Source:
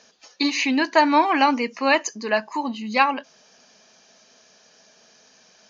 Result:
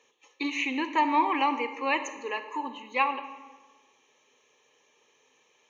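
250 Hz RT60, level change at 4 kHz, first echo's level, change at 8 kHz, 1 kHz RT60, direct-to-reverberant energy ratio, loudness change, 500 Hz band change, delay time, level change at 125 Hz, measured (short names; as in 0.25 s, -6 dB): 1.5 s, -10.0 dB, none, n/a, 1.3 s, 10.0 dB, -7.5 dB, -11.0 dB, none, n/a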